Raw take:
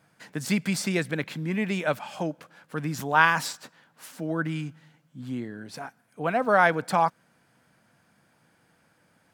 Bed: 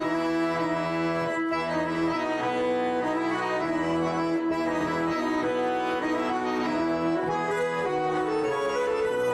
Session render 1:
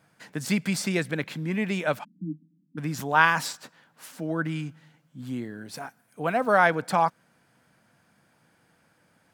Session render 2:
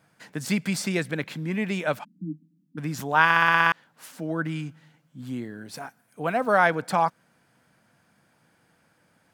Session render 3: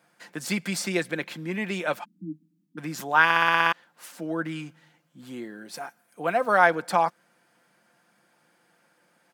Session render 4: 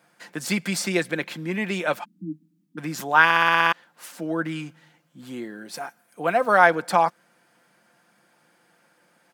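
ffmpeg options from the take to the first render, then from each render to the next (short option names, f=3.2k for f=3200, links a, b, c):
-filter_complex "[0:a]asplit=3[a][b][c];[a]afade=t=out:st=2.03:d=0.02[d];[b]asuperpass=centerf=220:order=20:qfactor=1.3,afade=t=in:st=2.03:d=0.02,afade=t=out:st=2.77:d=0.02[e];[c]afade=t=in:st=2.77:d=0.02[f];[d][e][f]amix=inputs=3:normalize=0,asettb=1/sr,asplit=3[g][h][i];[g]atrim=end=5.194[j];[h]atrim=start=5.19:end=6.59,asetpts=PTS-STARTPTS,afade=t=in:d=0.004:c=qsin,afade=t=out:st=1.396:d=0.004:c=qsin,highshelf=f=9.3k:g=9.5[k];[i]atrim=start=6.586[l];[j][k]acrossfade=d=0.004:c1=hsin:c2=qsin[m];[m][l]acrossfade=d=0.004:c1=qsin:c2=hsin"
-filter_complex "[0:a]asplit=9[a][b][c][d][e][f][g][h][i];[a]atrim=end=3.302[j];[b]atrim=start=3.238:end=3.302[k];[c]atrim=start=3.238:end=3.302[l];[d]atrim=start=3.238:end=3.302[m];[e]atrim=start=3.238:end=3.302[n];[f]atrim=start=3.238:end=3.302[o];[g]atrim=start=3.238:end=3.302[p];[h]atrim=start=3.238:end=3.302[q];[i]atrim=start=3.718[r];[j][k]acrossfade=d=0.004:c1=hsin:c2=hsin[s];[s][l]acrossfade=d=0.004:c1=hsin:c2=hsin[t];[t][m]acrossfade=d=0.004:c1=hsin:c2=hsin[u];[u][n]acrossfade=d=0.004:c1=hsin:c2=hsin[v];[v][o]acrossfade=d=0.004:c1=hsin:c2=hsin[w];[w][p]acrossfade=d=0.004:c1=hsin:c2=hsin[x];[x][q]acrossfade=d=0.004:c1=hsin:c2=hsin[y];[y][r]acrossfade=d=0.004:c1=hsin:c2=hsin"
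-af "highpass=260,aecho=1:1:5.7:0.39"
-af "volume=3dB,alimiter=limit=-3dB:level=0:latency=1"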